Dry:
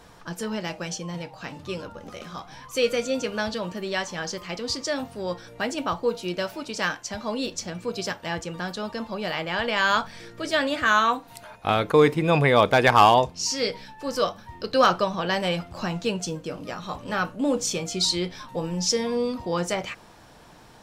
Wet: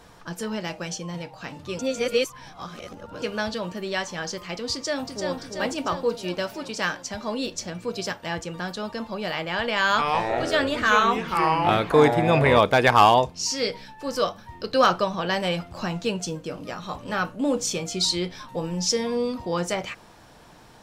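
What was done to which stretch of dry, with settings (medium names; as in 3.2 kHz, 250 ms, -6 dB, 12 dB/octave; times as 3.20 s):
1.79–3.22 s: reverse
4.73–5.39 s: echo throw 340 ms, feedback 65%, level -4.5 dB
9.83–12.59 s: ever faster or slower copies 154 ms, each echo -5 st, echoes 3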